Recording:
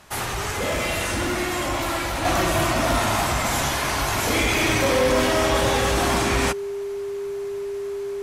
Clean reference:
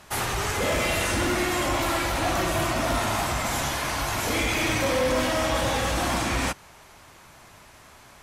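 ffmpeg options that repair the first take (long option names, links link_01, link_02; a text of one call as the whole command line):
ffmpeg -i in.wav -af "bandreject=frequency=400:width=30,asetnsamples=nb_out_samples=441:pad=0,asendcmd='2.25 volume volume -4dB',volume=0dB" out.wav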